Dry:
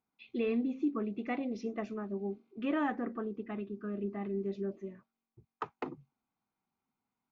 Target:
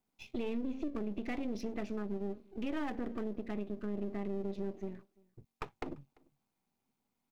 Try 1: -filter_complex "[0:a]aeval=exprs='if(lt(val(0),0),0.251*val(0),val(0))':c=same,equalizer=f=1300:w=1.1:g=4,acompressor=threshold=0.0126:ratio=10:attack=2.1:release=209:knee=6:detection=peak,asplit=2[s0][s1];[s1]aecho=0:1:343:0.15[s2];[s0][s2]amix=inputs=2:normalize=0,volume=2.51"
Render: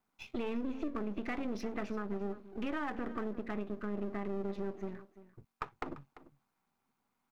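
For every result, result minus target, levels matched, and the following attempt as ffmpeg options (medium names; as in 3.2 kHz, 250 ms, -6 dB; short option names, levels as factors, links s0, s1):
echo-to-direct +10.5 dB; 1 kHz band +4.0 dB
-filter_complex "[0:a]aeval=exprs='if(lt(val(0),0),0.251*val(0),val(0))':c=same,equalizer=f=1300:w=1.1:g=4,acompressor=threshold=0.0126:ratio=10:attack=2.1:release=209:knee=6:detection=peak,asplit=2[s0][s1];[s1]aecho=0:1:343:0.0447[s2];[s0][s2]amix=inputs=2:normalize=0,volume=2.51"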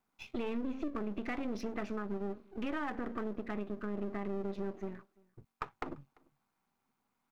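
1 kHz band +4.0 dB
-filter_complex "[0:a]aeval=exprs='if(lt(val(0),0),0.251*val(0),val(0))':c=same,equalizer=f=1300:w=1.1:g=-6.5,acompressor=threshold=0.0126:ratio=10:attack=2.1:release=209:knee=6:detection=peak,asplit=2[s0][s1];[s1]aecho=0:1:343:0.0447[s2];[s0][s2]amix=inputs=2:normalize=0,volume=2.51"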